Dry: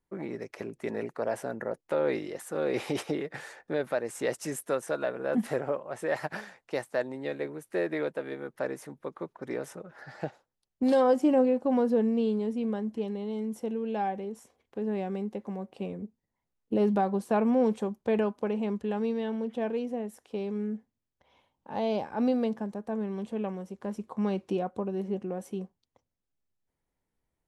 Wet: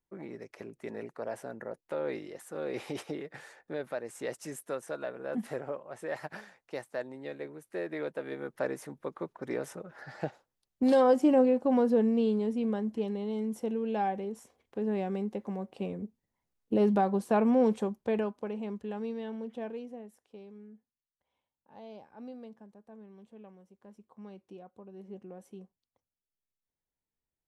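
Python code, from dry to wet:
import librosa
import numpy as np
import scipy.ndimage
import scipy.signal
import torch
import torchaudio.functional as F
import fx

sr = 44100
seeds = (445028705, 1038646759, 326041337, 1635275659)

y = fx.gain(x, sr, db=fx.line((7.85, -6.5), (8.44, 0.0), (17.82, 0.0), (18.46, -6.5), (19.56, -6.5), (20.69, -18.5), (24.78, -18.5), (25.18, -12.0)))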